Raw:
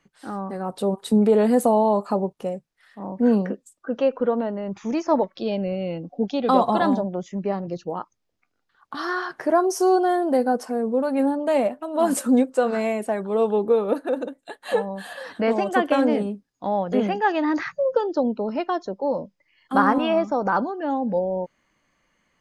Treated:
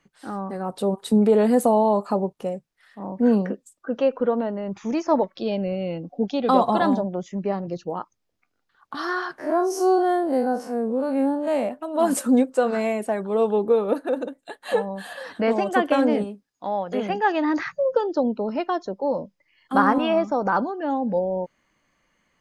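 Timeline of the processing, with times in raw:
9.38–11.69 time blur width 85 ms
16.24–17.1 low shelf 360 Hz -9 dB

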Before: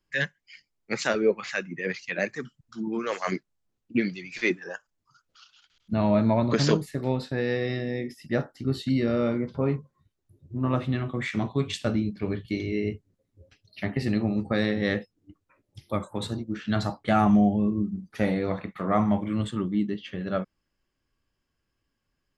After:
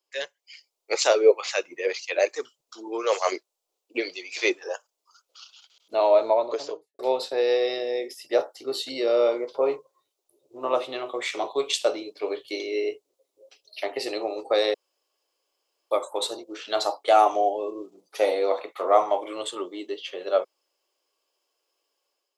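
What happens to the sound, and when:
6.02–6.99 studio fade out
14.74–15.91 room tone
whole clip: inverse Chebyshev high-pass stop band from 220 Hz, stop band 40 dB; bell 1700 Hz -15 dB 0.89 oct; AGC gain up to 6.5 dB; gain +3.5 dB

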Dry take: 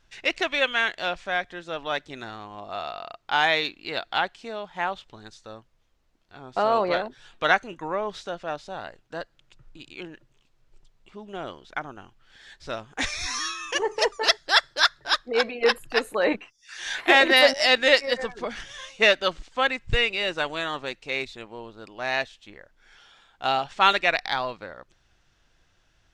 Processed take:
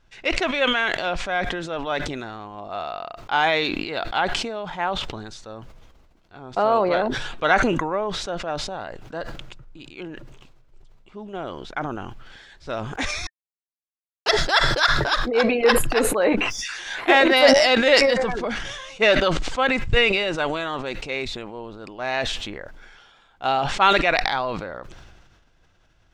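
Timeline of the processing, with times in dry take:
13.27–14.26 mute
whole clip: high shelf 2200 Hz -7.5 dB; notch 1800 Hz, Q 20; sustainer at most 34 dB/s; gain +3.5 dB

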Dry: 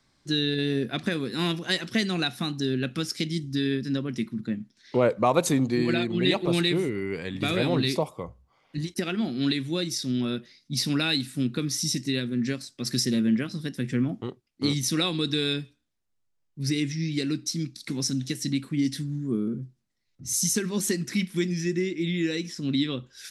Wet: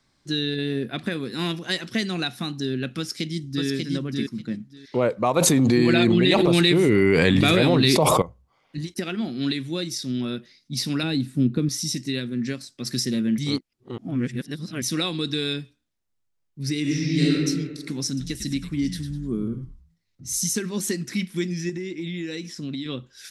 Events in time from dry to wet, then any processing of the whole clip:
0.56–1.23 bell 6000 Hz -7.5 dB 0.53 oct
2.98–3.67 echo throw 0.59 s, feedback 15%, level -3 dB
5.36–8.22 fast leveller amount 100%
11.03–11.69 tilt shelf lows +7.5 dB, about 780 Hz
13.38–14.82 reverse
16.81–17.32 reverb throw, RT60 1.5 s, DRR -7 dB
18.07–20.44 frequency-shifting echo 0.101 s, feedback 30%, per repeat -99 Hz, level -10 dB
21.69–22.86 compressor, threshold -27 dBFS

